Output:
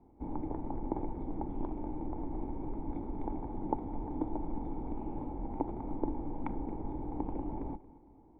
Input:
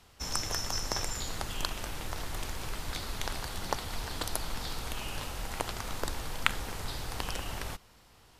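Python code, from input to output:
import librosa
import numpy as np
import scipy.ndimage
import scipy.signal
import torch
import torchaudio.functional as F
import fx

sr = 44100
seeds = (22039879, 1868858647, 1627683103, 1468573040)

p1 = fx.formant_cascade(x, sr, vowel='u')
p2 = fx.peak_eq(p1, sr, hz=99.0, db=-4.0, octaves=1.0)
p3 = p2 + fx.echo_feedback(p2, sr, ms=227, feedback_pct=39, wet_db=-19, dry=0)
y = F.gain(torch.from_numpy(p3), 14.0).numpy()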